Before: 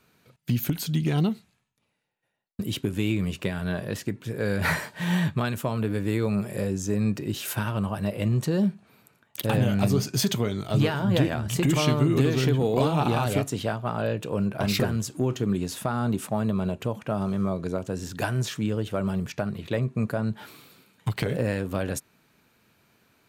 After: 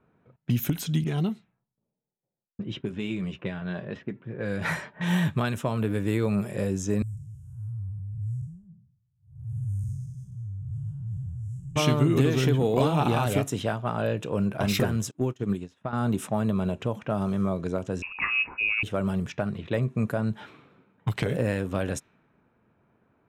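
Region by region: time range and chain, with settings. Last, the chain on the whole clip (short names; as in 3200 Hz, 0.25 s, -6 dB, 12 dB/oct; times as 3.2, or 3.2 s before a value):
1.04–5.01 low-pass opened by the level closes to 510 Hz, open at -22 dBFS + flange 1 Hz, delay 4.6 ms, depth 1.6 ms, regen -49%
7.02–11.76 time blur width 0.25 s + inverse Chebyshev band-stop 230–4400 Hz
15.11–15.93 high shelf 8300 Hz +2.5 dB + upward expander 2.5:1, over -39 dBFS
18.02–18.83 air absorption 170 m + inverted band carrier 2700 Hz
whole clip: low-pass opened by the level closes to 1100 Hz, open at -23 dBFS; notch 4500 Hz, Q 6.1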